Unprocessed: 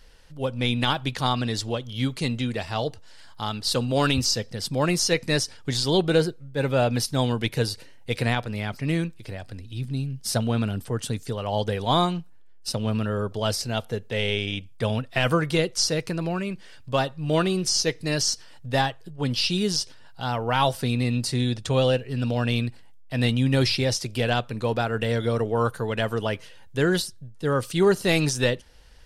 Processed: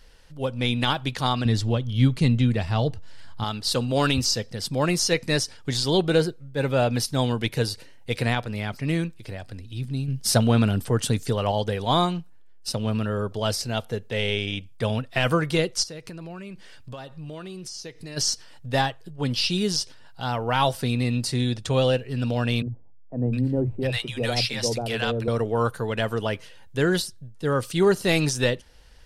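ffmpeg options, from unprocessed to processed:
-filter_complex "[0:a]asettb=1/sr,asplit=3[a][b][c];[a]atrim=end=1.454[d];[b]atrim=start=1.45:end=3.44,asetpts=PTS-STARTPTS,afade=t=in:d=0.004:c=qsin,afade=t=out:st=1.986:d=0.004:c=qsin,bass=f=250:g=10,treble=f=4k:g=-4[e];[c]atrim=start=3.436[f];[d][e]acrossfade=d=0.004:c1=hsin:c2=qsin[g];[g][f]acrossfade=d=0.004:c1=qsin:c2=hsin,asettb=1/sr,asplit=3[h][i][j];[h]atrim=end=10.084[k];[i]atrim=start=10.08:end=11.52,asetpts=PTS-STARTPTS,afade=t=in:d=0.004:c=qsin,afade=t=out:st=1.436:d=0.004:c=qsin,acontrast=31[l];[j]atrim=start=11.516[m];[k][l]acrossfade=d=0.004:c1=hsin:c2=qsin[n];[n][m]acrossfade=d=0.004:c1=qsin:c2=hsin,asplit=3[o][p][q];[o]afade=t=out:st=15.82:d=0.02[r];[p]acompressor=threshold=-35dB:ratio=6:attack=3.2:release=140:knee=1:detection=peak,afade=t=in:st=15.82:d=0.02,afade=t=out:st=18.16:d=0.02[s];[q]afade=t=in:st=18.16:d=0.02[t];[r][s][t]amix=inputs=3:normalize=0,asettb=1/sr,asplit=3[u][v][w];[u]atrim=end=22.624[x];[v]atrim=start=22.62:end=25.28,asetpts=PTS-STARTPTS,afade=t=in:d=0.004:c=qsin,afade=t=out:st=2.656:d=0.004:c=qsin,acrossover=split=160|760[y][z][aa];[y]adelay=40[ab];[aa]adelay=710[ac];[ab][z][ac]amix=inputs=3:normalize=0,atrim=end_sample=117306[ad];[w]atrim=start=25.276[ae];[x][ad]acrossfade=d=0.004:c1=hsin:c2=qsin[af];[af][ae]acrossfade=d=0.004:c1=qsin:c2=hsin"

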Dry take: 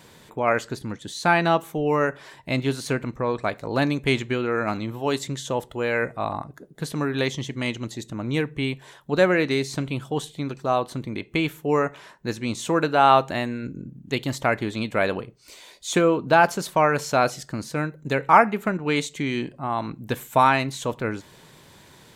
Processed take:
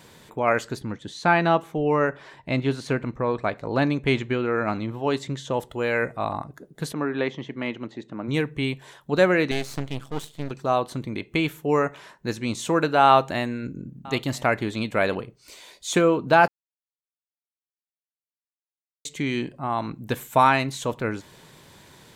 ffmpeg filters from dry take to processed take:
-filter_complex "[0:a]asettb=1/sr,asplit=3[a][b][c];[a]atrim=end=0.804[d];[b]atrim=start=0.8:end=5.54,asetpts=PTS-STARTPTS,afade=t=in:d=0.004:c=qsin,afade=t=out:st=4.736:d=0.004:c=qsin,aemphasis=mode=reproduction:type=50fm[e];[c]atrim=start=5.536[f];[d][e]acrossfade=d=0.004:c1=hsin:c2=qsin[g];[g][f]acrossfade=d=0.004:c1=qsin:c2=hsin,asplit=3[h][i][j];[h]afade=t=out:st=6.92:d=0.02[k];[i]highpass=200,lowpass=2.2k,afade=t=in:st=6.92:d=0.02,afade=t=out:st=8.27:d=0.02[l];[j]afade=t=in:st=8.27:d=0.02[m];[k][l][m]amix=inputs=3:normalize=0,asettb=1/sr,asplit=3[n][o][p];[n]atrim=end=9.514[q];[o]atrim=start=9.51:end=10.51,asetpts=PTS-STARTPTS,afade=t=in:d=0.004:c=qsin,afade=t=out:st=0.996:d=0.004:c=qsin,aeval=exprs='max(val(0),0)':c=same[r];[p]atrim=start=10.506[s];[q][r]acrossfade=d=0.004:c1=hsin:c2=qsin[t];[t][s]acrossfade=d=0.004:c1=qsin:c2=hsin,asettb=1/sr,asplit=3[u][v][w];[u]atrim=end=13.064[x];[v]atrim=start=13.06:end=15.15,asetpts=PTS-STARTPTS,afade=t=in:d=0.004:c=qsin,afade=t=out:st=2.086:d=0.004:c=qsin,aecho=1:1:989:0.0708,atrim=end_sample=92169[y];[w]atrim=start=15.146[z];[x][y]acrossfade=d=0.004:c1=hsin:c2=qsin[aa];[aa][z]acrossfade=d=0.004:c1=qsin:c2=hsin,asplit=3[ab][ac][ad];[ab]atrim=end=16.48,asetpts=PTS-STARTPTS,afade=t=out:st=16.476:d=0.004:c=hsin[ae];[ac]atrim=start=16.48:end=19.05,asetpts=PTS-STARTPTS,volume=0[af];[ad]atrim=start=19.05,asetpts=PTS-STARTPTS,afade=t=in:d=0.004:c=hsin[ag];[ae][af][ag]concat=n=3:v=0:a=1"

